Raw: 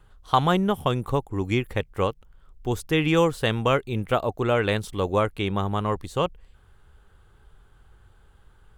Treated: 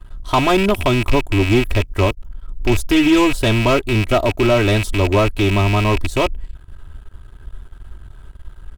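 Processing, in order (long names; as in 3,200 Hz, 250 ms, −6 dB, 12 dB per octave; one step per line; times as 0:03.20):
loose part that buzzes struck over −36 dBFS, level −15 dBFS
low-shelf EQ 98 Hz +10.5 dB
comb filter 3.1 ms, depth 89%
leveller curve on the samples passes 2
dynamic equaliser 2,000 Hz, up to −6 dB, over −28 dBFS, Q 0.86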